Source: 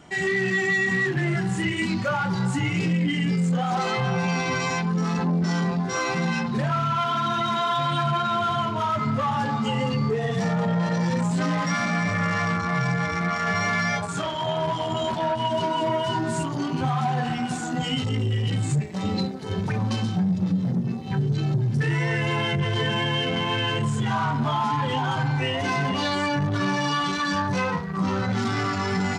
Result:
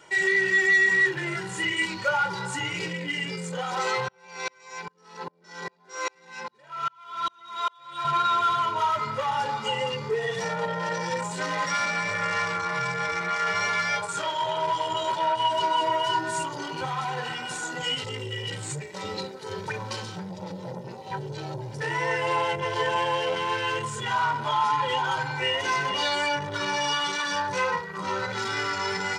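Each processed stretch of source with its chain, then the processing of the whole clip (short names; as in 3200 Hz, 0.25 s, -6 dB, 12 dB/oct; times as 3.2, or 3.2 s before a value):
4.08–8.05 HPF 200 Hz + dB-ramp tremolo swelling 2.5 Hz, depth 38 dB
20.3–23.35 band shelf 710 Hz +8 dB 1.1 oct + AM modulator 170 Hz, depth 15%
whole clip: HPF 640 Hz 6 dB/oct; comb 2.1 ms, depth 69%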